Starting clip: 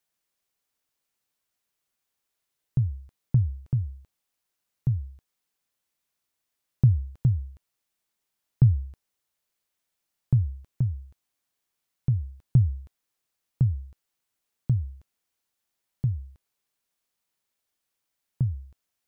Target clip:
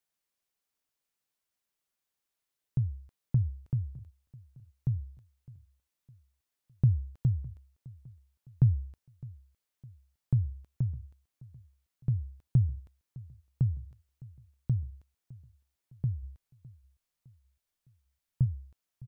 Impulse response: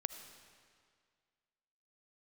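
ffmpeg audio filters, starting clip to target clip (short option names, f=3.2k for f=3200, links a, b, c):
-filter_complex "[0:a]asplit=3[a][b][c];[a]afade=t=out:st=16.22:d=0.02[d];[b]asubboost=boost=2:cutoff=150,afade=t=in:st=16.22:d=0.02,afade=t=out:st=18.44:d=0.02[e];[c]afade=t=in:st=18.44:d=0.02[f];[d][e][f]amix=inputs=3:normalize=0,aecho=1:1:609|1218|1827:0.0891|0.0419|0.0197,volume=-5dB"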